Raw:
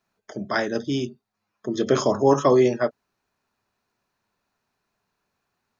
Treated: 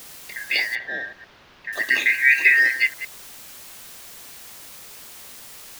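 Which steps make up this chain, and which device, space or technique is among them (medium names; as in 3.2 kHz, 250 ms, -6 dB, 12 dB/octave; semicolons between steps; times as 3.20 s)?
chunks repeated in reverse 113 ms, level -12.5 dB; peaking EQ 250 Hz -13 dB 1.3 oct; split-band scrambled radio (four frequency bands reordered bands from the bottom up 3142; band-pass 330–3300 Hz; white noise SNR 17 dB); 0.75–1.73 s: distance through air 280 m; trim +6 dB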